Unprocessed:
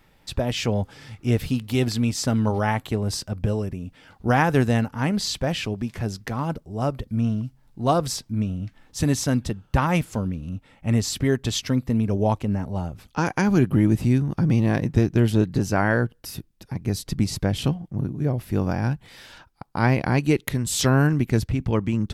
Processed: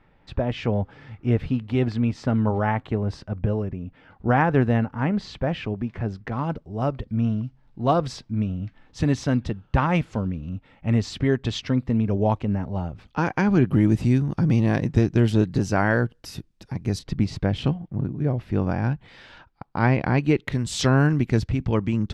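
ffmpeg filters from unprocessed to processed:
-af "asetnsamples=n=441:p=0,asendcmd='6.32 lowpass f 3500;13.68 lowpass f 7000;16.99 lowpass f 3300;20.52 lowpass f 5500',lowpass=2.1k"

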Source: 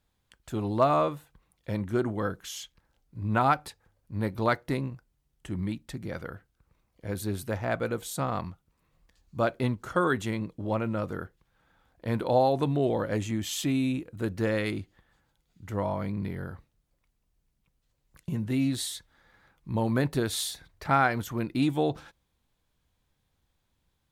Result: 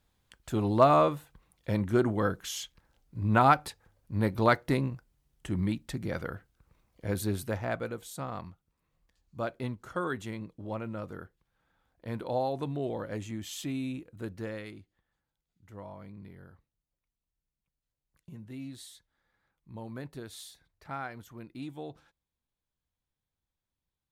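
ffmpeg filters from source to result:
-af "volume=2dB,afade=t=out:st=7.1:d=0.87:silence=0.334965,afade=t=out:st=14.22:d=0.52:silence=0.421697"

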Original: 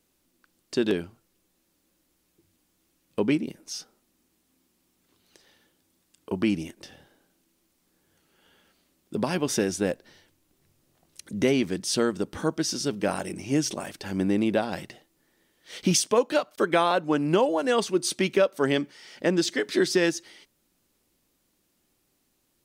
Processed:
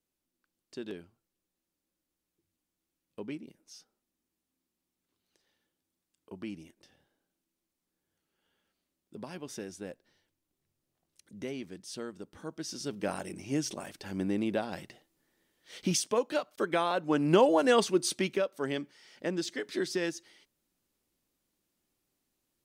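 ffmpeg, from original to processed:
-af "volume=1dB,afade=t=in:st=12.43:d=0.64:silence=0.354813,afade=t=in:st=16.94:d=0.61:silence=0.398107,afade=t=out:st=17.55:d=0.89:silence=0.298538"

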